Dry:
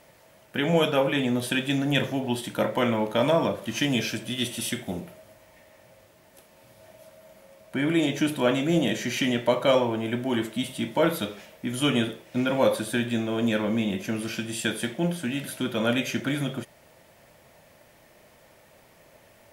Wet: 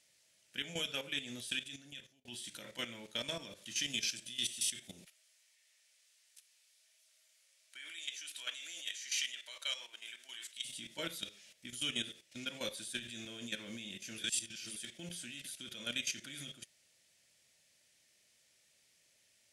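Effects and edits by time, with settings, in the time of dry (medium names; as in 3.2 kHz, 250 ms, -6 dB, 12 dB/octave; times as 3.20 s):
1.35–2.25 s: fade out
5.05–10.65 s: high-pass 1.1 kHz
14.18–14.76 s: reverse
whole clip: frequency weighting ITU-R 468; level held to a coarse grid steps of 12 dB; amplifier tone stack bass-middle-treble 10-0-1; trim +11.5 dB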